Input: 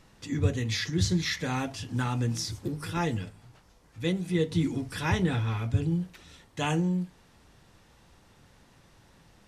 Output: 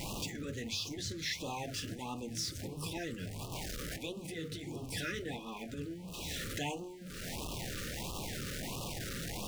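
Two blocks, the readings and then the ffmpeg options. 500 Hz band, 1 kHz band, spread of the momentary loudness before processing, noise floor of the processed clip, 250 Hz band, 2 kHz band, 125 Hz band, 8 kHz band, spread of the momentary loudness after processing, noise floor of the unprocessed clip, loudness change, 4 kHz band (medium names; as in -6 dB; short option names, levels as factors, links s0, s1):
-8.0 dB, -8.0 dB, 8 LU, -46 dBFS, -11.5 dB, -6.0 dB, -14.0 dB, -1.5 dB, 5 LU, -60 dBFS, -10.0 dB, -3.0 dB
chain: -af "aeval=exprs='val(0)+0.5*0.0126*sgn(val(0))':c=same,equalizer=f=65:t=o:w=1.1:g=-3,acompressor=threshold=0.00794:ratio=2.5,afftfilt=real='re*lt(hypot(re,im),0.0794)':imag='im*lt(hypot(re,im),0.0794)':win_size=1024:overlap=0.75,afftfilt=real='re*(1-between(b*sr/1024,810*pow(1800/810,0.5+0.5*sin(2*PI*1.5*pts/sr))/1.41,810*pow(1800/810,0.5+0.5*sin(2*PI*1.5*pts/sr))*1.41))':imag='im*(1-between(b*sr/1024,810*pow(1800/810,0.5+0.5*sin(2*PI*1.5*pts/sr))/1.41,810*pow(1800/810,0.5+0.5*sin(2*PI*1.5*pts/sr))*1.41))':win_size=1024:overlap=0.75,volume=1.58"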